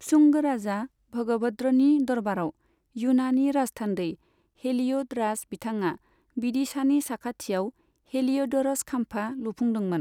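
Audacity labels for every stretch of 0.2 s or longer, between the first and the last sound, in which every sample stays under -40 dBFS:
0.860000	1.130000	silence
2.500000	2.960000	silence
4.150000	4.640000	silence
5.960000	6.370000	silence
7.700000	8.140000	silence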